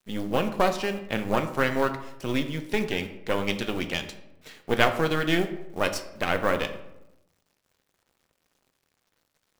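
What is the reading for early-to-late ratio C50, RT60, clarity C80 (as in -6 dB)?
11.0 dB, 0.90 s, 13.5 dB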